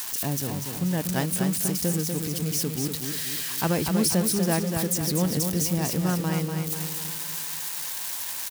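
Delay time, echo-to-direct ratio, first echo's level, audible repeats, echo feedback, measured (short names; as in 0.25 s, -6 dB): 0.243 s, -4.5 dB, -5.5 dB, 5, 48%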